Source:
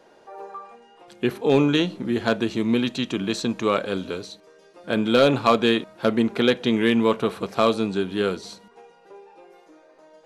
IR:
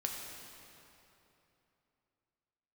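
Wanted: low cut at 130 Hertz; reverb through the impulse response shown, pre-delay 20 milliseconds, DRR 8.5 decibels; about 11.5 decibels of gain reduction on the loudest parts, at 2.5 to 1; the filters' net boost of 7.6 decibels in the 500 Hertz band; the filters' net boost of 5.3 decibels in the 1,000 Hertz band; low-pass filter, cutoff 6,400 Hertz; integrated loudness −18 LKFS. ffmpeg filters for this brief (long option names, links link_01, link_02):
-filter_complex "[0:a]highpass=130,lowpass=6400,equalizer=frequency=500:width_type=o:gain=8,equalizer=frequency=1000:width_type=o:gain=4.5,acompressor=threshold=-24dB:ratio=2.5,asplit=2[link_01][link_02];[1:a]atrim=start_sample=2205,adelay=20[link_03];[link_02][link_03]afir=irnorm=-1:irlink=0,volume=-10.5dB[link_04];[link_01][link_04]amix=inputs=2:normalize=0,volume=7.5dB"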